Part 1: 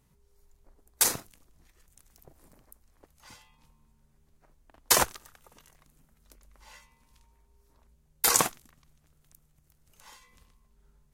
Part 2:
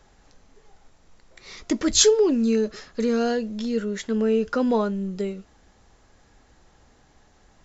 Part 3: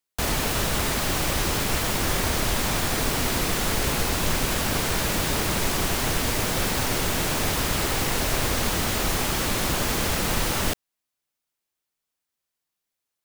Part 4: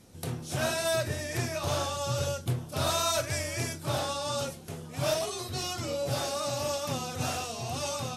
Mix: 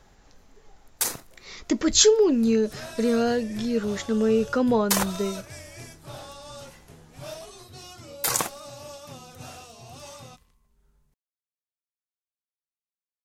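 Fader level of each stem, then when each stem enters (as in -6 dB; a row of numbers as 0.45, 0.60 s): -2.0 dB, 0.0 dB, off, -10.0 dB; 0.00 s, 0.00 s, off, 2.20 s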